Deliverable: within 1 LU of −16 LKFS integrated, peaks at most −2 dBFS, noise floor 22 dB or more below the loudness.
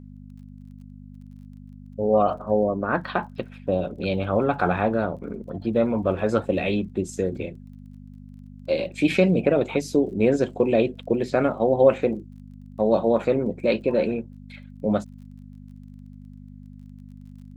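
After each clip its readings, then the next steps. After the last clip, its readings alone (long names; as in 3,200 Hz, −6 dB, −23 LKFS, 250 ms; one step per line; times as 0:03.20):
crackle rate 27 per second; mains hum 50 Hz; hum harmonics up to 250 Hz; level of the hum −41 dBFS; integrated loudness −23.5 LKFS; sample peak −4.5 dBFS; target loudness −16.0 LKFS
→ click removal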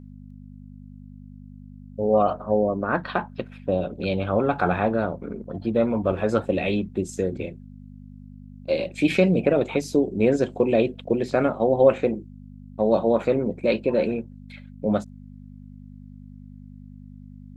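crackle rate 0.057 per second; mains hum 50 Hz; hum harmonics up to 250 Hz; level of the hum −41 dBFS
→ hum removal 50 Hz, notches 5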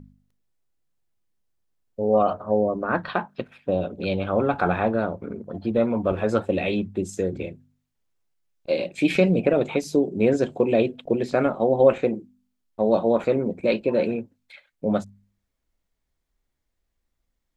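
mains hum none found; integrated loudness −23.5 LKFS; sample peak −4.5 dBFS; target loudness −16.0 LKFS
→ level +7.5 dB
brickwall limiter −2 dBFS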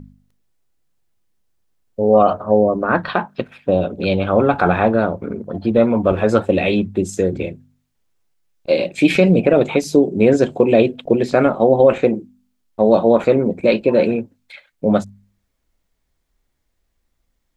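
integrated loudness −16.5 LKFS; sample peak −2.0 dBFS; background noise floor −70 dBFS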